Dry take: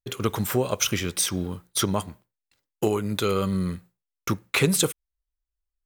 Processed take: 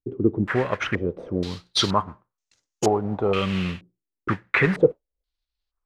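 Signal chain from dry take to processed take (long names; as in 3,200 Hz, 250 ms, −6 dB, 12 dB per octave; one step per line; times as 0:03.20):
noise that follows the level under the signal 10 dB
low-pass on a step sequencer 2.1 Hz 330–6,400 Hz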